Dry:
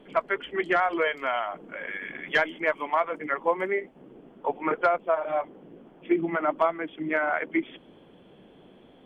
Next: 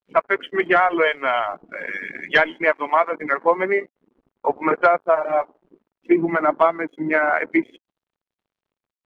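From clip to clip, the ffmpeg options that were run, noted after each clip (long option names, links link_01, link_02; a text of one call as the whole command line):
ffmpeg -i in.wav -af "aeval=exprs='sgn(val(0))*max(abs(val(0))-0.00473,0)':channel_layout=same,afftdn=noise_reduction=19:noise_floor=-46,aeval=exprs='0.282*(cos(1*acos(clip(val(0)/0.282,-1,1)))-cos(1*PI/2))+0.00282*(cos(5*acos(clip(val(0)/0.282,-1,1)))-cos(5*PI/2))':channel_layout=same,volume=7.5dB" out.wav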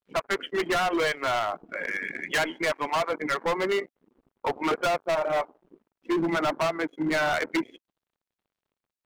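ffmpeg -i in.wav -af "asoftclip=type=hard:threshold=-20.5dB,volume=-1.5dB" out.wav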